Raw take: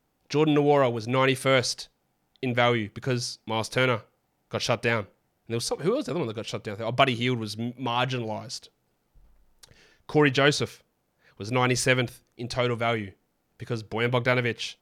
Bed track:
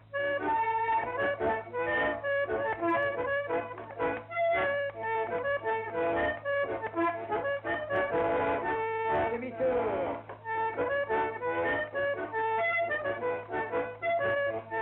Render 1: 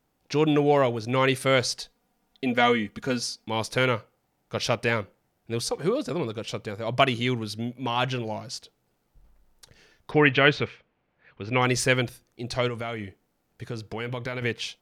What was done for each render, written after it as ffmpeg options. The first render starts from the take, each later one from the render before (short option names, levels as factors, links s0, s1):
-filter_complex "[0:a]asettb=1/sr,asplit=3[s0][s1][s2];[s0]atrim=end=1.794[s3];[s1]atrim=start=1.79:end=3.45,asetpts=PTS-STARTPTS,afade=t=in:d=0.004:c=qsin,afade=t=out:st=1.656:d=0.004:c=qsin,aecho=1:1:4.2:0.65,atrim=end_sample=73206[s4];[s2]atrim=start=3.446[s5];[s3][s4]acrossfade=d=0.004:c1=hsin:c2=qsin[s6];[s6][s5]acrossfade=d=0.004:c1=qsin:c2=hsin,asettb=1/sr,asplit=3[s7][s8][s9];[s7]atrim=end=10.114[s10];[s8]atrim=start=10.11:end=11.62,asetpts=PTS-STARTPTS,afade=t=in:d=0.004:c=qsin,afade=t=out:st=1.506:d=0.004:c=qsin,lowpass=f=2500:t=q:w=1.8[s11];[s9]atrim=start=11.616[s12];[s10][s11]acrossfade=d=0.004:c1=hsin:c2=qsin[s13];[s13][s12]acrossfade=d=0.004:c1=qsin:c2=hsin,asettb=1/sr,asplit=3[s14][s15][s16];[s14]atrim=end=12.684[s17];[s15]atrim=start=12.68:end=14.42,asetpts=PTS-STARTPTS,afade=t=in:d=0.004:c=qsin,afade=t=out:st=1.736:d=0.004:c=qsin,acompressor=threshold=0.0398:ratio=5:attack=3.2:release=140:knee=1:detection=peak[s18];[s16]atrim=start=14.416[s19];[s17][s18]acrossfade=d=0.004:c1=hsin:c2=qsin[s20];[s20][s19]acrossfade=d=0.004:c1=qsin:c2=hsin"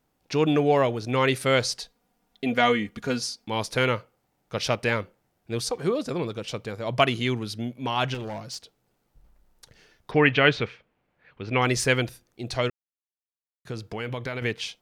-filter_complex "[0:a]asettb=1/sr,asplit=3[s0][s1][s2];[s0]atrim=end=8.144[s3];[s1]atrim=start=8.14:end=8.56,asetpts=PTS-STARTPTS,afade=t=in:d=0.004:c=qsin,afade=t=out:st=0.416:d=0.004:c=qsin,volume=31.6,asoftclip=hard,volume=0.0316[s4];[s2]atrim=start=8.556[s5];[s3][s4]acrossfade=d=0.004:c1=hsin:c2=qsin[s6];[s6][s5]acrossfade=d=0.004:c1=qsin:c2=hsin,asplit=3[s7][s8][s9];[s7]atrim=end=12.7,asetpts=PTS-STARTPTS,afade=t=out:st=12.696:d=0.004:c=hsin[s10];[s8]atrim=start=12.7:end=13.65,asetpts=PTS-STARTPTS,volume=0[s11];[s9]atrim=start=13.65,asetpts=PTS-STARTPTS,afade=t=in:d=0.004:c=hsin[s12];[s10][s11][s12]concat=n=3:v=0:a=1"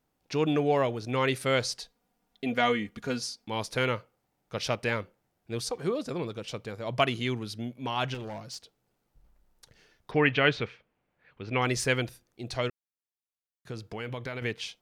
-af "volume=0.596"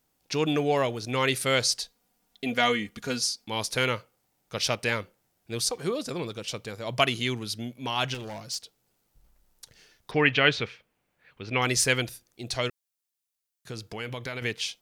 -af "highshelf=f=3100:g=11"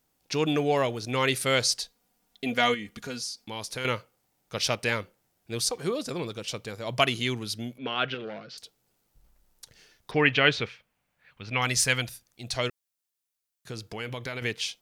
-filter_complex "[0:a]asettb=1/sr,asplit=3[s0][s1][s2];[s0]atrim=end=2.744[s3];[s1]atrim=start=2.74:end=3.85,asetpts=PTS-STARTPTS,afade=t=in:d=0.004:c=qsin,afade=t=out:st=1.106:d=0.004:c=qsin,acompressor=threshold=0.0158:ratio=2:attack=3.2:release=140:knee=1:detection=peak[s4];[s2]atrim=start=3.846[s5];[s3][s4]acrossfade=d=0.004:c1=hsin:c2=qsin[s6];[s6][s5]acrossfade=d=0.004:c1=qsin:c2=hsin,asettb=1/sr,asplit=3[s7][s8][s9];[s7]atrim=end=7.784[s10];[s8]atrim=start=7.78:end=8.58,asetpts=PTS-STARTPTS,afade=t=in:d=0.004:c=qsin,afade=t=out:st=0.796:d=0.004:c=qsin,highpass=f=150:w=0.5412,highpass=f=150:w=1.3066,equalizer=f=460:t=q:w=4:g=6,equalizer=f=910:t=q:w=4:g=-10,equalizer=f=1400:t=q:w=4:g=7,lowpass=f=3600:w=0.5412,lowpass=f=3600:w=1.3066[s11];[s9]atrim=start=8.576[s12];[s10][s11]acrossfade=d=0.004:c1=hsin:c2=qsin[s13];[s13][s12]acrossfade=d=0.004:c1=qsin:c2=hsin,asettb=1/sr,asplit=3[s14][s15][s16];[s14]atrim=end=10.694[s17];[s15]atrim=start=10.69:end=12.55,asetpts=PTS-STARTPTS,afade=t=in:d=0.004:c=qsin,afade=t=out:st=1.856:d=0.004:c=qsin,equalizer=f=370:w=1.6:g=-9[s18];[s16]atrim=start=12.546[s19];[s17][s18]acrossfade=d=0.004:c1=hsin:c2=qsin[s20];[s20][s19]acrossfade=d=0.004:c1=qsin:c2=hsin"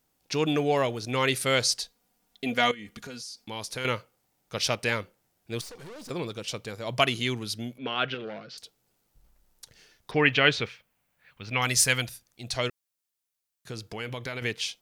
-filter_complex "[0:a]asettb=1/sr,asplit=3[s0][s1][s2];[s0]atrim=end=2.714[s3];[s1]atrim=start=2.71:end=3.48,asetpts=PTS-STARTPTS,afade=t=in:d=0.004:c=qsin,afade=t=out:st=0.766:d=0.004:c=qsin,acompressor=threshold=0.0141:ratio=4:attack=3.2:release=140:knee=1:detection=peak[s4];[s2]atrim=start=3.476[s5];[s3][s4]acrossfade=d=0.004:c1=hsin:c2=qsin[s6];[s6][s5]acrossfade=d=0.004:c1=qsin:c2=hsin,asettb=1/sr,asplit=3[s7][s8][s9];[s7]atrim=end=5.614[s10];[s8]atrim=start=5.61:end=6.1,asetpts=PTS-STARTPTS,afade=t=in:d=0.004:c=qsin,afade=t=out:st=0.486:d=0.004:c=qsin,aeval=exprs='(tanh(126*val(0)+0.4)-tanh(0.4))/126':c=same[s11];[s9]atrim=start=6.096[s12];[s10][s11]acrossfade=d=0.004:c1=hsin:c2=qsin[s13];[s13][s12]acrossfade=d=0.004:c1=qsin:c2=hsin,asettb=1/sr,asplit=3[s14][s15][s16];[s14]atrim=end=10.244[s17];[s15]atrim=start=10.24:end=12.06,asetpts=PTS-STARTPTS,afade=t=in:d=0.004:c=qsin,afade=t=out:st=1.816:d=0.004:c=qsin,highshelf=f=9700:g=8.5[s18];[s16]atrim=start=12.056[s19];[s17][s18]acrossfade=d=0.004:c1=hsin:c2=qsin[s20];[s20][s19]acrossfade=d=0.004:c1=qsin:c2=hsin"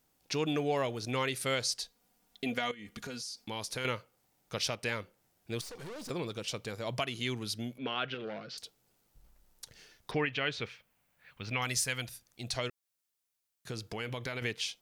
-af "acompressor=threshold=0.0112:ratio=1.5,alimiter=limit=0.1:level=0:latency=1:release=272"